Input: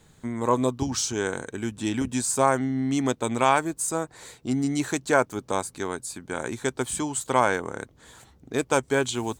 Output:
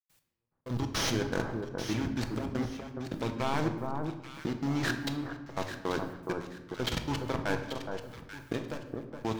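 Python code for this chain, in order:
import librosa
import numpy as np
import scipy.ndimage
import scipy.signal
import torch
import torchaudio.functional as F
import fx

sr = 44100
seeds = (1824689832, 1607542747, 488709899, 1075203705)

y = fx.cvsd(x, sr, bps=32000)
y = fx.low_shelf(y, sr, hz=230.0, db=3.5)
y = fx.level_steps(y, sr, step_db=21)
y = fx.leveller(y, sr, passes=5)
y = fx.over_compress(y, sr, threshold_db=-24.0, ratio=-1.0)
y = fx.quant_dither(y, sr, seeds[0], bits=10, dither='triangular')
y = fx.step_gate(y, sr, bpm=159, pattern='.x.....xx.xxx', floor_db=-60.0, edge_ms=4.5)
y = fx.echo_alternate(y, sr, ms=418, hz=1300.0, feedback_pct=54, wet_db=-4.5)
y = fx.room_shoebox(y, sr, seeds[1], volume_m3=520.0, walls='mixed', distance_m=0.67)
y = y * librosa.db_to_amplitude(-8.0)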